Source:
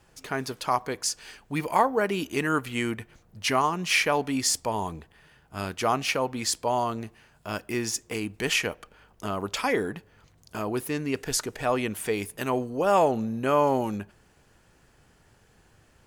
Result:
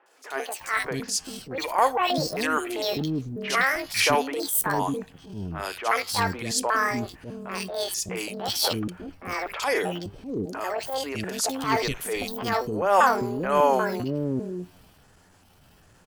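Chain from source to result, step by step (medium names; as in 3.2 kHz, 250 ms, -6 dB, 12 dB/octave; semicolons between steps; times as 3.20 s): pitch shift switched off and on +10 st, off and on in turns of 394 ms; three bands offset in time mids, highs, lows 60/600 ms, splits 380/2300 Hz; transient shaper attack -10 dB, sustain +2 dB; trim +5 dB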